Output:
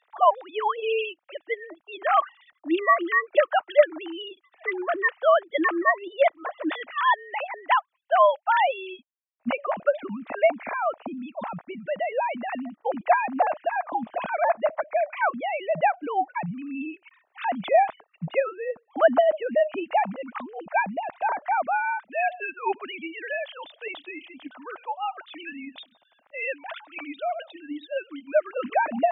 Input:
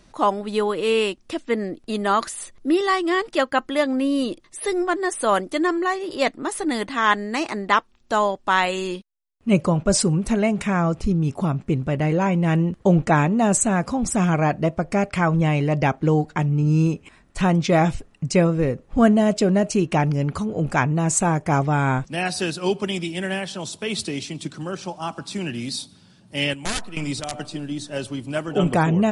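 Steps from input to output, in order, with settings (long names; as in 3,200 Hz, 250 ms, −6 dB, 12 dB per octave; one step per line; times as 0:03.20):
three sine waves on the formant tracks
low shelf with overshoot 520 Hz −7 dB, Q 3
level −3 dB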